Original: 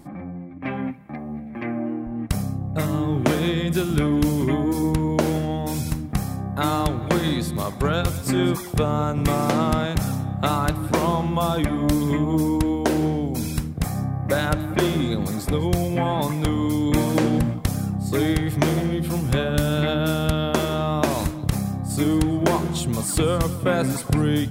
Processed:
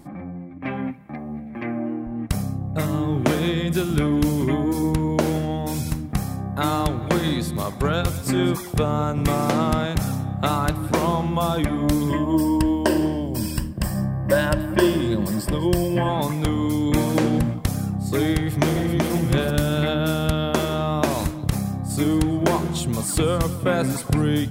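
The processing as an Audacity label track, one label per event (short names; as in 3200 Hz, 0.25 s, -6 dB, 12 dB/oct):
12.090000	16.090000	ripple EQ crests per octave 1.3, crest to trough 11 dB
18.370000	19.120000	echo throw 0.38 s, feedback 25%, level -3.5 dB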